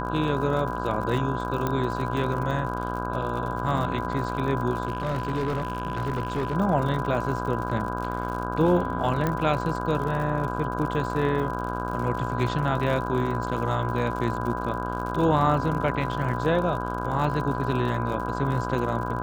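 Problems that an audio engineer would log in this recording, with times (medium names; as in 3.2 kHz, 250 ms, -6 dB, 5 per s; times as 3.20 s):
buzz 60 Hz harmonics 27 -31 dBFS
crackle 67 per s -32 dBFS
whine 1 kHz -32 dBFS
1.67 s: pop -13 dBFS
4.85–6.56 s: clipped -22.5 dBFS
9.27 s: pop -13 dBFS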